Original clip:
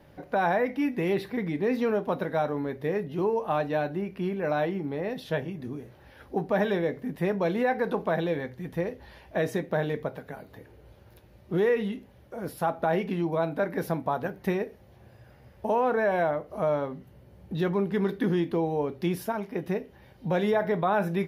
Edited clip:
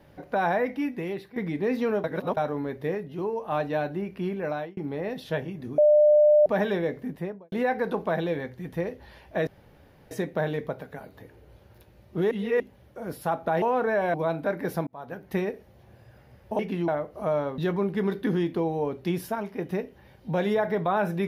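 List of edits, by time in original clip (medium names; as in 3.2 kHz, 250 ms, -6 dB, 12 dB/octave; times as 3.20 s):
0.68–1.36 s: fade out, to -13.5 dB
2.04–2.37 s: reverse
2.95–3.52 s: gain -3.5 dB
4.27–4.77 s: fade out equal-power
5.78–6.46 s: bleep 599 Hz -14 dBFS
7.01–7.52 s: studio fade out
9.47 s: insert room tone 0.64 s
11.67–11.96 s: reverse
12.98–13.27 s: swap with 15.72–16.24 s
14.00–14.51 s: fade in
16.94–17.55 s: delete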